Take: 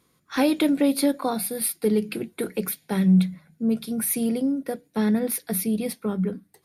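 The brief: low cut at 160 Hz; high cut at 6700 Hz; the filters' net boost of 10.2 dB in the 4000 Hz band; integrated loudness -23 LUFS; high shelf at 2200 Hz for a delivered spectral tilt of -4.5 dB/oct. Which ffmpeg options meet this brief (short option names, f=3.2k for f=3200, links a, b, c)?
-af "highpass=160,lowpass=6.7k,highshelf=f=2.2k:g=5.5,equalizer=f=4k:t=o:g=7.5,volume=1.5dB"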